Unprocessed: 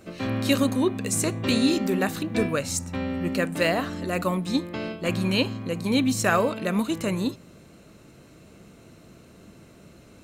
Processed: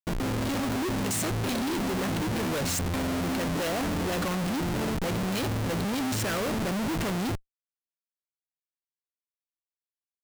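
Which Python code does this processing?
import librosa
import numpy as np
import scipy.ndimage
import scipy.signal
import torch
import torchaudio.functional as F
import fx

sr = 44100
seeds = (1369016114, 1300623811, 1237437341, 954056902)

y = fx.rotary(x, sr, hz=0.65)
y = fx.schmitt(y, sr, flips_db=-38.0)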